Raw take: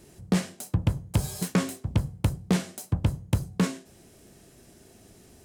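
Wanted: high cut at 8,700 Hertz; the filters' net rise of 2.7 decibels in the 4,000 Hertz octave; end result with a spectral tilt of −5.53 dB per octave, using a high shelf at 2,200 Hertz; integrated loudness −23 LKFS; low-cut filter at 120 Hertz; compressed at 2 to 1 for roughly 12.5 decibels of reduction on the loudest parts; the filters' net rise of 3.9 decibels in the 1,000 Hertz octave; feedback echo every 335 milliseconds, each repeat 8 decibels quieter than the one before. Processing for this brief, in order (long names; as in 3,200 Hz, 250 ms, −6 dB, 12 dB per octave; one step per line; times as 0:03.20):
high-pass filter 120 Hz
low-pass filter 8,700 Hz
parametric band 1,000 Hz +5.5 dB
high-shelf EQ 2,200 Hz −5.5 dB
parametric band 4,000 Hz +8.5 dB
downward compressor 2 to 1, threshold −43 dBFS
repeating echo 335 ms, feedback 40%, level −8 dB
level +18 dB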